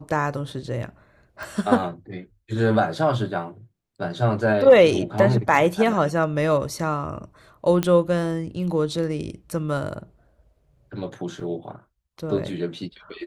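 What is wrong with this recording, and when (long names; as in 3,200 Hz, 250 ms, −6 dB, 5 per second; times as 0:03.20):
0:01.43: click
0:07.83: click −9 dBFS
0:11.40: drop-out 3.9 ms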